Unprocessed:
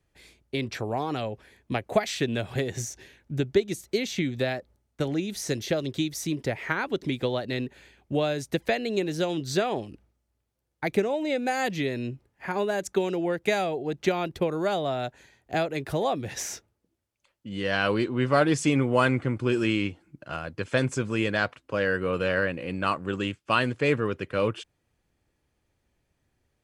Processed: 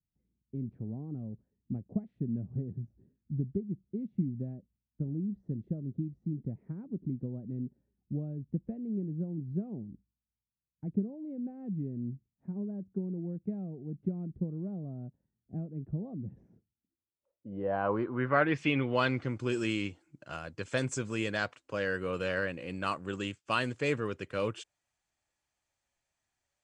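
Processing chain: low-pass sweep 200 Hz -> 7600 Hz, 16.67–19.47; spectral noise reduction 12 dB; gain -7 dB

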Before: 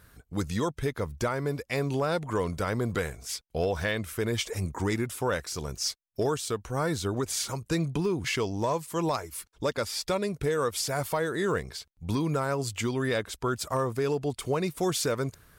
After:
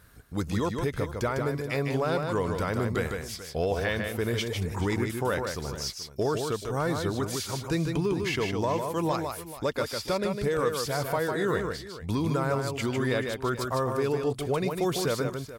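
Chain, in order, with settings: dynamic EQ 7900 Hz, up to -7 dB, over -49 dBFS, Q 1; on a send: tapped delay 0.153/0.432 s -5/-15 dB

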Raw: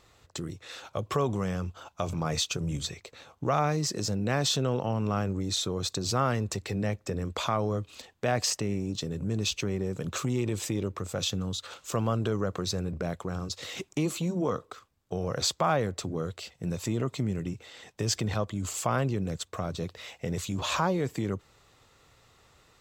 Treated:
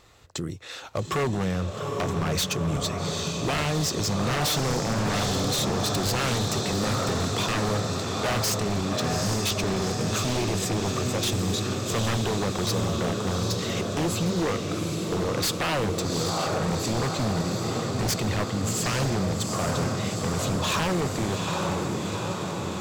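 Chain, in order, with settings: diffused feedback echo 0.815 s, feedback 72%, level -5 dB; wavefolder -24 dBFS; gain +4.5 dB

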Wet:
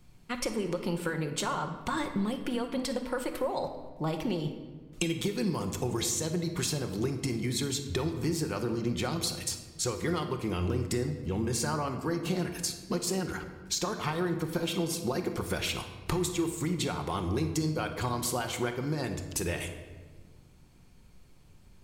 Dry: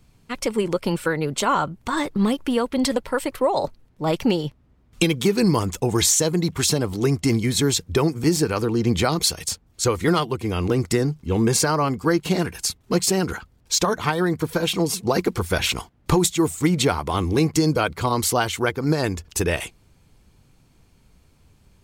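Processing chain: compressor, threshold -26 dBFS, peak gain reduction 12 dB; shoebox room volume 1200 m³, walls mixed, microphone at 0.94 m; gain -3.5 dB

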